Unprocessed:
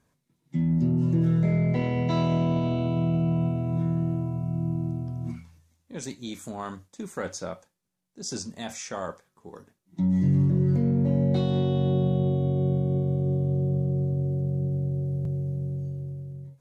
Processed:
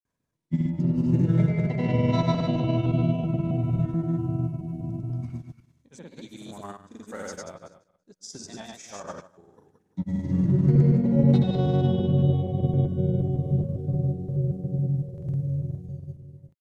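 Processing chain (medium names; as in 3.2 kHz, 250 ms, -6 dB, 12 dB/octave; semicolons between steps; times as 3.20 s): backward echo that repeats 114 ms, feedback 40%, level -1 dB; granulator 100 ms, pitch spread up and down by 0 st; upward expansion 1.5:1, over -43 dBFS; trim +2.5 dB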